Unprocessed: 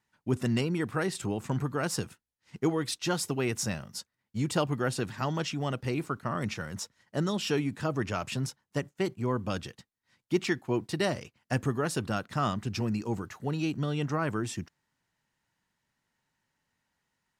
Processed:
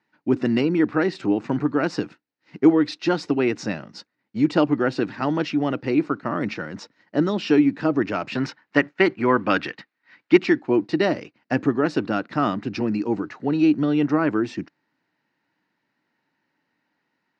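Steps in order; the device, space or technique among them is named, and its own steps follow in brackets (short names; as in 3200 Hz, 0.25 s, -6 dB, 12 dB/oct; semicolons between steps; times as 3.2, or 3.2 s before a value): 8.35–10.38 bell 1800 Hz +12.5 dB 2.3 oct; kitchen radio (speaker cabinet 200–4300 Hz, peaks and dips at 300 Hz +10 dB, 1100 Hz -3 dB, 3300 Hz -8 dB); gain +7.5 dB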